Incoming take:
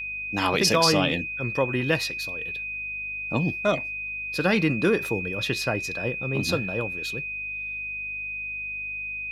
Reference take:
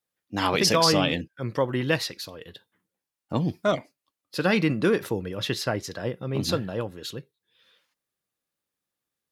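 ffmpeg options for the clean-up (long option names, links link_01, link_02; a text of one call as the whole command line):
ffmpeg -i in.wav -af "bandreject=frequency=50.7:width_type=h:width=4,bandreject=frequency=101.4:width_type=h:width=4,bandreject=frequency=152.1:width_type=h:width=4,bandreject=frequency=202.8:width_type=h:width=4,bandreject=frequency=253.5:width_type=h:width=4,bandreject=frequency=2500:width=30,asetnsamples=nb_out_samples=441:pad=0,asendcmd='7.25 volume volume 7dB',volume=0dB" out.wav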